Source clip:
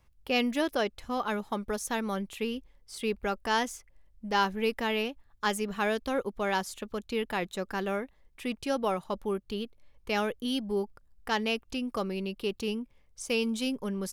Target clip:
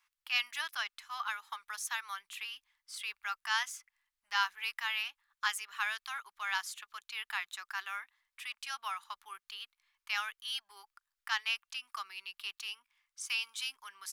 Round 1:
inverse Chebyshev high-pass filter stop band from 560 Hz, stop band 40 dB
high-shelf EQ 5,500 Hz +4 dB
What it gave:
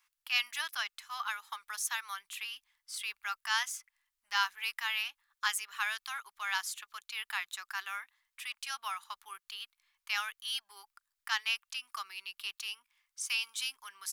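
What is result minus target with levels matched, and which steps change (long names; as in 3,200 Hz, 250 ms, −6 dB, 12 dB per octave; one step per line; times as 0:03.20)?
8,000 Hz band +3.0 dB
change: high-shelf EQ 5,500 Hz −2.5 dB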